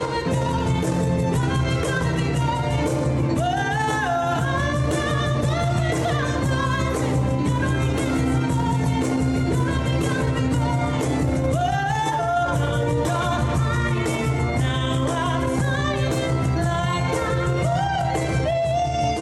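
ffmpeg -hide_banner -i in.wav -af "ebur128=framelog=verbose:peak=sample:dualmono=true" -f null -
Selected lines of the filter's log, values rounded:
Integrated loudness:
  I:         -19.1 LUFS
  Threshold: -29.1 LUFS
Loudness range:
  LRA:         0.5 LU
  Threshold: -39.0 LUFS
  LRA low:   -19.3 LUFS
  LRA high:  -18.8 LUFS
Sample peak:
  Peak:      -11.9 dBFS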